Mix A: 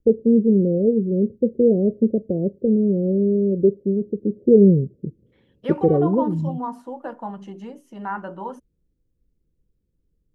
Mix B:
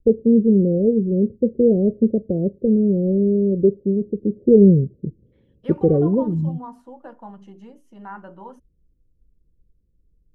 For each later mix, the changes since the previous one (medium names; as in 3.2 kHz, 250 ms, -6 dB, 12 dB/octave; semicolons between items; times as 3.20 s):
second voice -8.0 dB; master: add bass shelf 86 Hz +10.5 dB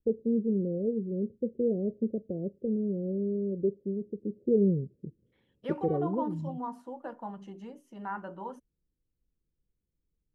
first voice -12.0 dB; master: add bass shelf 86 Hz -10.5 dB